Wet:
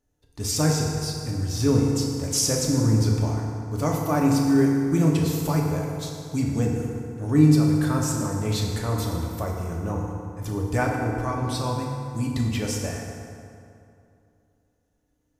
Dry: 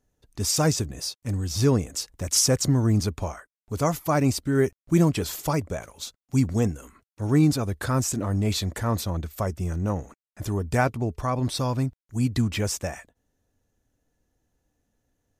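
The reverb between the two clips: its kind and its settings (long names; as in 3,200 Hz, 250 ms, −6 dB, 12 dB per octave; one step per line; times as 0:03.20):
feedback delay network reverb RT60 2.6 s, high-frequency decay 0.6×, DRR −1.5 dB
level −4 dB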